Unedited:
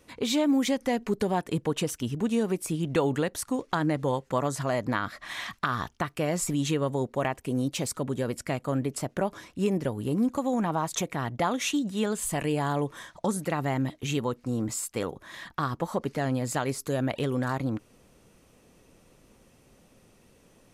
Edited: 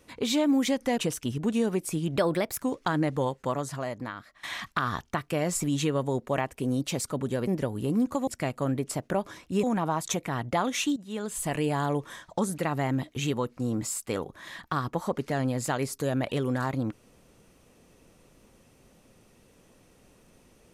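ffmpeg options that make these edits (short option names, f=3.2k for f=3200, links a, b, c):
-filter_complex "[0:a]asplit=9[a][b][c][d][e][f][g][h][i];[a]atrim=end=0.982[j];[b]atrim=start=1.748:end=2.934[k];[c]atrim=start=2.93:end=3.49,asetpts=PTS-STARTPTS,asetrate=53361,aresample=44100[l];[d]atrim=start=3.486:end=5.3,asetpts=PTS-STARTPTS,afade=t=out:st=0.534:d=1.28:silence=0.141254[m];[e]atrim=start=5.3:end=8.342,asetpts=PTS-STARTPTS,afade=t=in:d=0.004:c=hsin:silence=0.141254[n];[f]atrim=start=9.698:end=10.502[o];[g]atrim=start=8.338:end=9.702[p];[h]atrim=start=10.498:end=11.83,asetpts=PTS-STARTPTS,afade=t=out:st=1.328:d=0.004:c=hsin:silence=0.177828[q];[i]atrim=start=11.83,asetpts=PTS-STARTPTS,afade=t=in:d=0.57:silence=0.177828[r];[j][k]acrossfade=d=0.004:c1=hsin:c2=hsin[s];[s][l]acrossfade=d=0.004:c1=hsin:c2=hsin[t];[m][n]concat=n=2:v=0:a=1[u];[t][u]acrossfade=d=0.004:c1=hsin:c2=hsin[v];[v][o]acrossfade=d=0.004:c1=hsin:c2=hsin[w];[w][p]acrossfade=d=0.004:c1=hsin:c2=hsin[x];[q][r]concat=n=2:v=0:a=1[y];[x][y]acrossfade=d=0.004:c1=hsin:c2=hsin"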